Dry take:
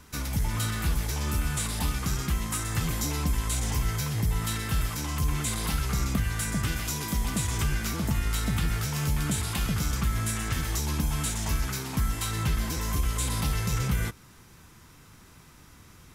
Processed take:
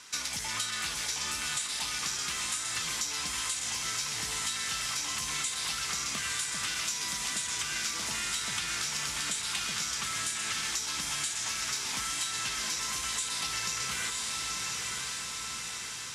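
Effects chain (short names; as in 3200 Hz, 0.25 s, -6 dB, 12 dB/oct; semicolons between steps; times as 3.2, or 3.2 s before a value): weighting filter ITU-R 468; diffused feedback echo 0.96 s, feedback 59%, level -6 dB; compressor, threshold -28 dBFS, peak gain reduction 10.5 dB; high shelf 9800 Hz -9.5 dB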